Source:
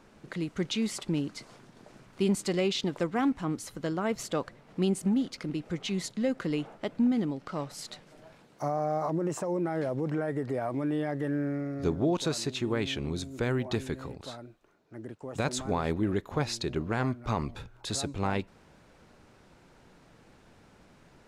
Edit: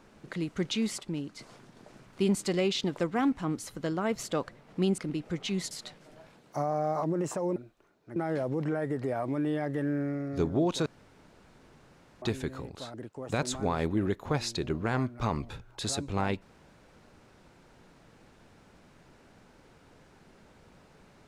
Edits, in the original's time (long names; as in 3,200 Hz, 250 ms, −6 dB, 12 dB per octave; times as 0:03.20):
0:00.98–0:01.39: clip gain −5 dB
0:04.98–0:05.38: remove
0:06.11–0:07.77: remove
0:12.32–0:13.68: fill with room tone
0:14.40–0:15.00: move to 0:09.62